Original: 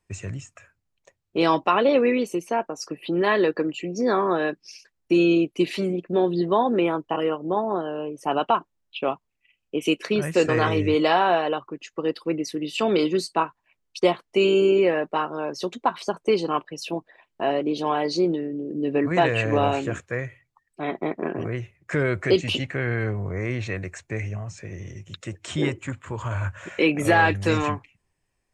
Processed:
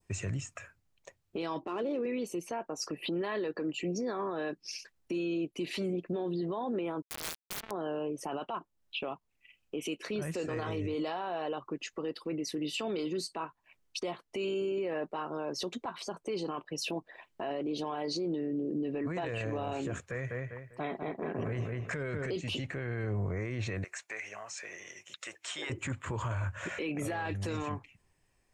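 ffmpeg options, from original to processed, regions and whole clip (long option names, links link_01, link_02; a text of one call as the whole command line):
ffmpeg -i in.wav -filter_complex "[0:a]asettb=1/sr,asplit=3[link_01][link_02][link_03];[link_01]atrim=end=1.624[link_04];[link_02]atrim=start=1.62:end=2.06,asetpts=PTS-STARTPTS,afade=type=in:duration=0.004:curve=qsin,afade=type=out:start_time=0.436:duration=0.004:curve=qsin,equalizer=frequency=340:width_type=o:width=0.51:gain=15,adynamicsmooth=sensitivity=2:basefreq=3800[link_05];[link_03]atrim=start=2.056[link_06];[link_04][link_05]acrossfade=duration=0.004:curve1=hsin:curve2=qsin[link_07];[link_07][link_06]acrossfade=duration=0.004:curve1=qsin:curve2=hsin,asettb=1/sr,asplit=3[link_08][link_09][link_10];[link_08]atrim=end=7.024[link_11];[link_09]atrim=start=7.02:end=7.71,asetpts=PTS-STARTPTS,afade=type=in:duration=0.004:curve=qsin,afade=type=out:start_time=0.686:duration=0.004:curve=qsin,acrusher=bits=2:mix=0:aa=0.5,aeval=exprs='(mod(18.8*val(0)+1,2)-1)/18.8':channel_layout=same[link_12];[link_10]atrim=start=7.706[link_13];[link_11][link_12]acrossfade=duration=0.004:curve1=hsin:curve2=qsin[link_14];[link_14][link_13]acrossfade=duration=0.004:curve1=qsin:curve2=hsin,asettb=1/sr,asplit=3[link_15][link_16][link_17];[link_15]atrim=end=19.934[link_18];[link_16]atrim=start=19.93:end=22.3,asetpts=PTS-STARTPTS,afade=type=in:duration=0.004:curve=qsin,afade=type=out:start_time=2.366:duration=0.004:curve=qsin,bandreject=frequency=330:width=5.3,asplit=2[link_19][link_20];[link_20]adelay=198,lowpass=frequency=2800:poles=1,volume=-7.5dB,asplit=2[link_21][link_22];[link_22]adelay=198,lowpass=frequency=2800:poles=1,volume=0.26,asplit=2[link_23][link_24];[link_24]adelay=198,lowpass=frequency=2800:poles=1,volume=0.26[link_25];[link_19][link_21][link_23][link_25]amix=inputs=4:normalize=0,atrim=end_sample=104517[link_26];[link_17]atrim=start=22.296[link_27];[link_18][link_26]acrossfade=duration=0.004:curve1=hsin:curve2=qsin[link_28];[link_28][link_27]acrossfade=duration=0.004:curve1=qsin:curve2=hsin,asettb=1/sr,asplit=3[link_29][link_30][link_31];[link_29]atrim=end=23.844[link_32];[link_30]atrim=start=23.84:end=25.7,asetpts=PTS-STARTPTS,afade=type=in:duration=0.004:curve=qsin,afade=type=out:start_time=1.856:duration=0.004:curve=qsin,highpass=880,acompressor=threshold=-41dB:ratio=2.5:attack=3.2:release=140:knee=1:detection=peak[link_33];[link_31]atrim=start=25.696[link_34];[link_32][link_33]acrossfade=duration=0.004:curve1=hsin:curve2=qsin[link_35];[link_35][link_34]acrossfade=duration=0.004:curve1=qsin:curve2=hsin,adynamicequalizer=threshold=0.0112:dfrequency=2000:dqfactor=0.98:tfrequency=2000:tqfactor=0.98:attack=5:release=100:ratio=0.375:range=2:mode=cutabove:tftype=bell,acompressor=threshold=-35dB:ratio=2.5,alimiter=level_in=6dB:limit=-24dB:level=0:latency=1:release=13,volume=-6dB,volume=3dB" out.wav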